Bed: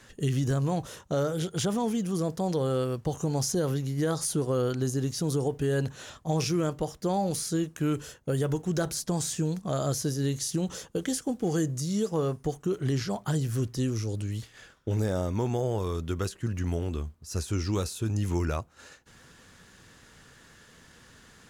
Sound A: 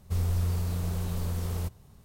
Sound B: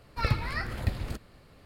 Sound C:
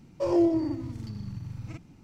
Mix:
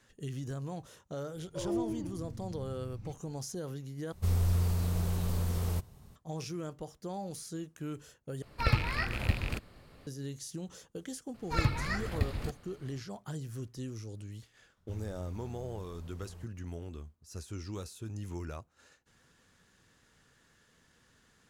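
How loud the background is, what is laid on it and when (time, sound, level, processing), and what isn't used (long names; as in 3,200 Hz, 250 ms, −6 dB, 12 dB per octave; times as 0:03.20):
bed −12 dB
0:01.35: mix in C −13 dB + low-shelf EQ 140 Hz +11.5 dB
0:04.12: overwrite with A −0.5 dB
0:08.42: overwrite with B −0.5 dB + loose part that buzzes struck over −34 dBFS, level −24 dBFS
0:11.34: mix in B −2 dB
0:14.77: mix in A −17.5 dB + high-shelf EQ 5,800 Hz −9 dB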